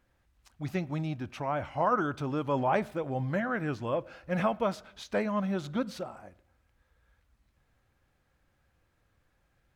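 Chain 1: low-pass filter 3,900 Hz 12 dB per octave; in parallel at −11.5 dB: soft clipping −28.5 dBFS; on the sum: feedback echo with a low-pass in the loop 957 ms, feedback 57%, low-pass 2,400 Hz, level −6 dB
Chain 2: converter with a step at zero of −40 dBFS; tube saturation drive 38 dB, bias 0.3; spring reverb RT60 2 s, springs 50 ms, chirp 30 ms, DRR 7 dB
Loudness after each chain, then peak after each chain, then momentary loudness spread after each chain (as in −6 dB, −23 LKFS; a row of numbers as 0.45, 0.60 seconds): −30.5, −41.5 LKFS; −13.0, −30.5 dBFS; 18, 8 LU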